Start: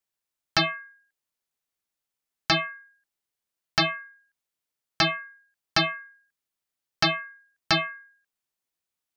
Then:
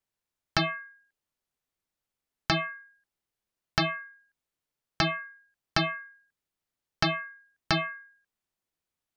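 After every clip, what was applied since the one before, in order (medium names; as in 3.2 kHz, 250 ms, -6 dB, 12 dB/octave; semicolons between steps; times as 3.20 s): tilt EQ -1.5 dB/octave; compression, threshold -23 dBFS, peak gain reduction 5 dB; trim +1 dB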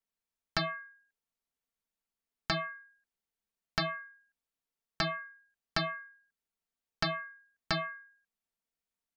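comb 4.4 ms, depth 49%; trim -6.5 dB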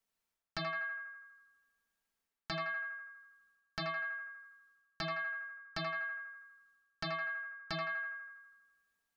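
reverse; compression, threshold -42 dBFS, peak gain reduction 15.5 dB; reverse; band-passed feedback delay 81 ms, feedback 66%, band-pass 1.3 kHz, level -3.5 dB; trim +4.5 dB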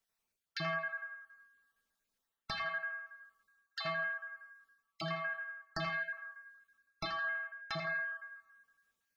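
random holes in the spectrogram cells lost 33%; reverberation, pre-delay 3 ms, DRR 6 dB; trim +1.5 dB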